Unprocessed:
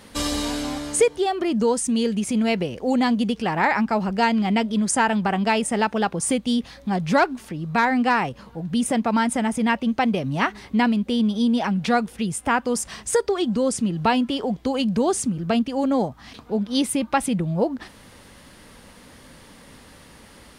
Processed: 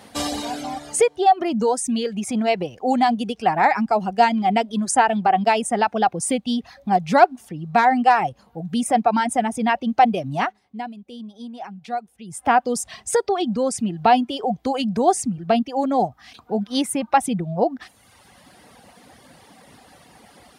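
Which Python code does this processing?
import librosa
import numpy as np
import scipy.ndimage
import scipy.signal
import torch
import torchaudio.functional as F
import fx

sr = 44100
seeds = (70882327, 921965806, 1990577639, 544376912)

y = fx.edit(x, sr, fx.fade_down_up(start_s=10.36, length_s=2.12, db=-14.0, fade_s=0.23), tone=tone)
y = scipy.signal.sosfilt(scipy.signal.butter(2, 88.0, 'highpass', fs=sr, output='sos'), y)
y = fx.dereverb_blind(y, sr, rt60_s=1.1)
y = fx.peak_eq(y, sr, hz=740.0, db=12.5, octaves=0.3)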